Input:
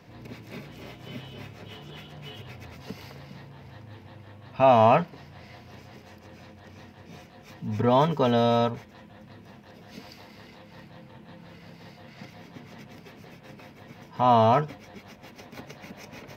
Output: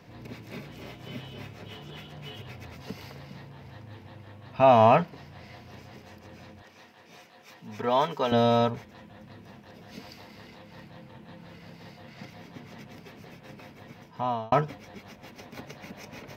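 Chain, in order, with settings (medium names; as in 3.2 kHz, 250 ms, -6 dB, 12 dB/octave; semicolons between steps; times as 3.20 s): 6.62–8.32 s: high-pass 670 Hz 6 dB/octave; 13.86–14.52 s: fade out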